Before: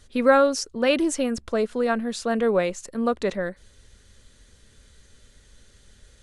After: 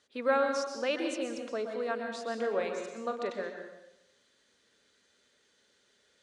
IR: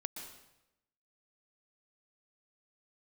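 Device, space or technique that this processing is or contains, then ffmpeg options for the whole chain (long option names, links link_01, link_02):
supermarket ceiling speaker: -filter_complex "[0:a]asettb=1/sr,asplit=3[link_01][link_02][link_03];[link_01]atrim=end=2.364[link_04];[link_02]atrim=start=2.36:end=3.28,asetpts=PTS-STARTPTS,afade=type=in:duration=0.004:curve=qsin,afade=type=out:start_time=0.916:duration=0.004:curve=qsin,asplit=2[link_05][link_06];[link_06]adelay=41,volume=-8.5dB[link_07];[link_05][link_07]amix=inputs=2:normalize=0,atrim=end_sample=40572[link_08];[link_03]atrim=start=3.276[link_09];[link_04][link_08]acrossfade=duration=0.004:curve1=hsin:curve2=qsin[link_10];[link_10][link_09]acrossfade=duration=0.004:curve1=qsin:curve2=hsin,highpass=340,lowpass=6100[link_11];[1:a]atrim=start_sample=2205[link_12];[link_11][link_12]afir=irnorm=-1:irlink=0,volume=-7dB"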